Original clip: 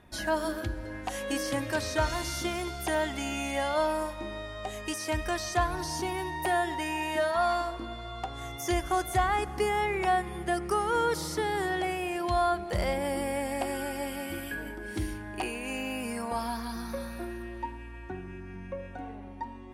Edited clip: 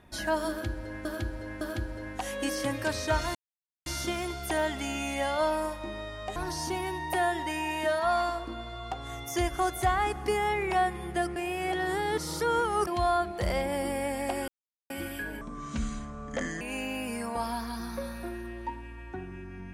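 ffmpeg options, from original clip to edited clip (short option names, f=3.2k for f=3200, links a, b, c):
-filter_complex "[0:a]asplit=11[a][b][c][d][e][f][g][h][i][j][k];[a]atrim=end=1.052[l];[b]atrim=start=0.488:end=1.052[m];[c]atrim=start=0.488:end=2.23,asetpts=PTS-STARTPTS,afade=t=out:st=1.738:d=0.004:c=hsin,apad=pad_dur=0.51[n];[d]atrim=start=2.23:end=4.732,asetpts=PTS-STARTPTS,afade=t=in:d=0.004:c=hsin[o];[e]atrim=start=5.678:end=10.682[p];[f]atrim=start=10.678:end=12.192,asetpts=PTS-STARTPTS,areverse[q];[g]atrim=start=12.188:end=13.8,asetpts=PTS-STARTPTS,afade=t=out:st=1.608:d=0.004:c=hsin[r];[h]atrim=start=13.8:end=14.22,asetpts=PTS-STARTPTS,volume=0[s];[i]atrim=start=14.22:end=14.734,asetpts=PTS-STARTPTS,afade=t=in:d=0.004:c=hsin[t];[j]atrim=start=14.73:end=15.57,asetpts=PTS-STARTPTS,asetrate=30870,aresample=44100[u];[k]atrim=start=15.566[v];[l][m]acrossfade=d=0.004:c1=hsin:c2=hsin[w];[n][o]concat=n=2:v=0:a=1[x];[w][x]acrossfade=d=0.004:c1=hsin:c2=hsin[y];[y][p]acrossfade=d=0.004:c1=hsin:c2=hsin[z];[z][q]acrossfade=d=0.004:c1=hsin:c2=hsin[aa];[r][s][t]concat=n=3:v=0:a=1[ab];[aa][ab]acrossfade=d=0.004:c1=hsin:c2=hsin[ac];[ac][u]acrossfade=d=0.004:c1=hsin:c2=hsin[ad];[ad][v]acrossfade=d=0.004:c1=hsin:c2=hsin"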